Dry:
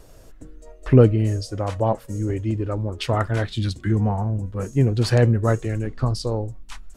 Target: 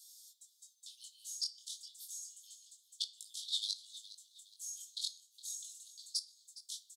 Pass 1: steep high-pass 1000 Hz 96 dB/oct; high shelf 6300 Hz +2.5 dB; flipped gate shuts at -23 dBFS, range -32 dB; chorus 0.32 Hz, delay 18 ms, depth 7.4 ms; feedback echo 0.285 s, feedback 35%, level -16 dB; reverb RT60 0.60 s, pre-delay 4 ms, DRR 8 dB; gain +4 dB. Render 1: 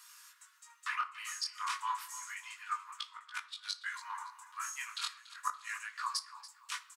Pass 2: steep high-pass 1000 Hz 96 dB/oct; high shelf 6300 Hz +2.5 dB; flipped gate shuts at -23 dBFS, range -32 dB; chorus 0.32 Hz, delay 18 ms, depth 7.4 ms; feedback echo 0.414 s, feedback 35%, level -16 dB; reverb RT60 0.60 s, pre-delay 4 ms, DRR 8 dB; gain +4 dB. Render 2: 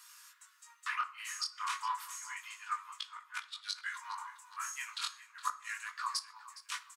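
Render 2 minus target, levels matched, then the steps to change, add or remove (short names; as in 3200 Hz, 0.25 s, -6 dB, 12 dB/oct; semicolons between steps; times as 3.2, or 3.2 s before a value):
4000 Hz band -4.0 dB
change: steep high-pass 3400 Hz 96 dB/oct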